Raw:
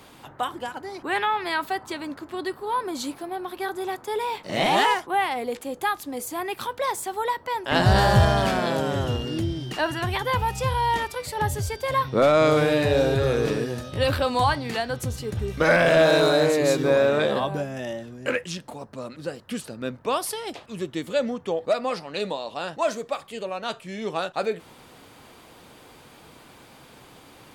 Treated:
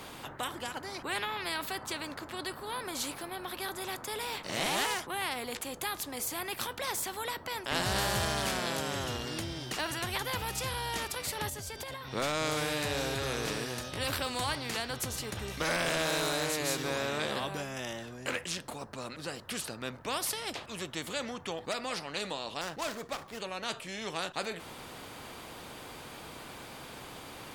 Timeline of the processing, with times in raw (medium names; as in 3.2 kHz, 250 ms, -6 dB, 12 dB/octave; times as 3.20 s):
11.49–12.11 s: compression 16:1, threshold -33 dBFS
22.61–23.40 s: median filter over 15 samples
whole clip: spectrum-flattening compressor 2:1; trim -7.5 dB